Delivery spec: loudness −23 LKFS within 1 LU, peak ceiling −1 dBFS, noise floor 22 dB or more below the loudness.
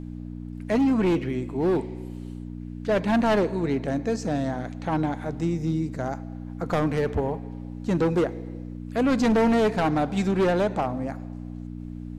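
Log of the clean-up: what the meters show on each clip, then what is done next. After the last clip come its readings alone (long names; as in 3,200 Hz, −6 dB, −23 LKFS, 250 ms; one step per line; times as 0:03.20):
mains hum 60 Hz; hum harmonics up to 300 Hz; level of the hum −33 dBFS; integrated loudness −25.0 LKFS; sample peak −15.0 dBFS; target loudness −23.0 LKFS
→ hum removal 60 Hz, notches 5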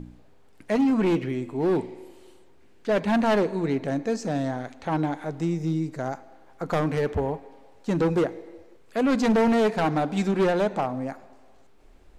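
mains hum none found; integrated loudness −25.5 LKFS; sample peak −15.0 dBFS; target loudness −23.0 LKFS
→ level +2.5 dB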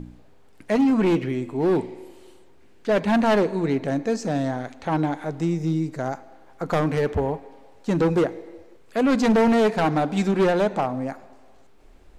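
integrated loudness −23.0 LKFS; sample peak −12.5 dBFS; background noise floor −50 dBFS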